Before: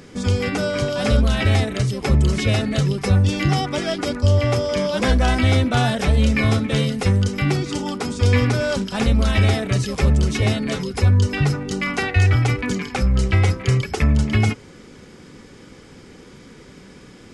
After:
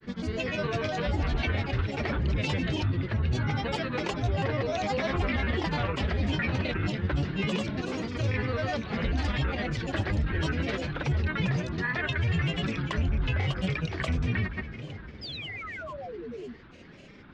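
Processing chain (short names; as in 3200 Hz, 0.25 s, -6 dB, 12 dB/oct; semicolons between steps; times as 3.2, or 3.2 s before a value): LPF 4600 Hz 24 dB/oct; bell 2000 Hz +7.5 dB 0.4 oct; limiter -12.5 dBFS, peak gain reduction 8.5 dB; on a send: split-band echo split 1100 Hz, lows 0.512 s, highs 0.267 s, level -12 dB; on the sum: painted sound fall, 15.23–16.54, 240–3600 Hz -31 dBFS; grains, grains 20/s, pitch spread up and down by 7 st; gain -6.5 dB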